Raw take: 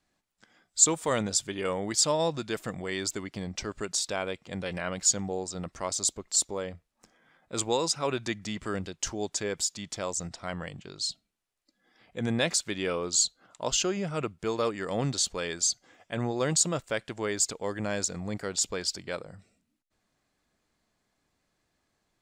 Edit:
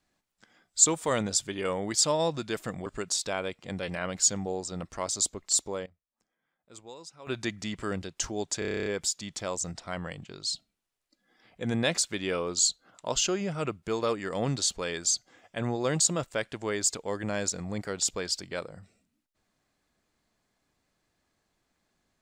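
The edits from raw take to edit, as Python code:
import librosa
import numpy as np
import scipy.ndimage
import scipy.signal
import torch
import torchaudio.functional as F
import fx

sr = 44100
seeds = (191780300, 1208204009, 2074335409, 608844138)

y = fx.edit(x, sr, fx.cut(start_s=2.86, length_s=0.83),
    fx.fade_down_up(start_s=6.43, length_s=1.93, db=-18.5, fade_s=0.26, curve='log'),
    fx.stutter(start_s=9.42, slice_s=0.03, count=10), tone=tone)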